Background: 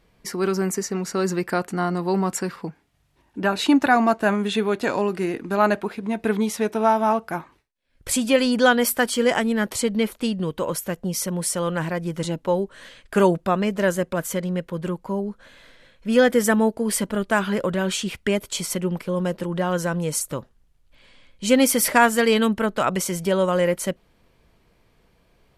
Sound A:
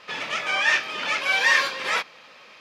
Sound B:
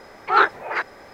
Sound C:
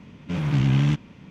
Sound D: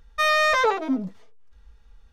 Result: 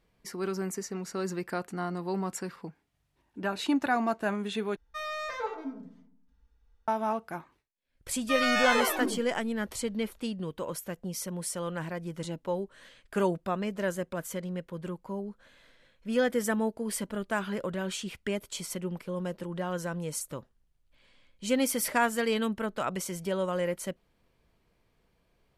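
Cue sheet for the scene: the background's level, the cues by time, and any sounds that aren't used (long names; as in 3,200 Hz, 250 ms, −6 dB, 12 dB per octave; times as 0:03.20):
background −10 dB
0:04.76: overwrite with D −17 dB + feedback delay network reverb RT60 0.57 s, low-frequency decay 1.55×, high-frequency decay 0.4×, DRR 1 dB
0:08.11: mix in D −9 dB + delay with pitch and tempo change per echo 156 ms, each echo +3 semitones, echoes 3
not used: A, B, C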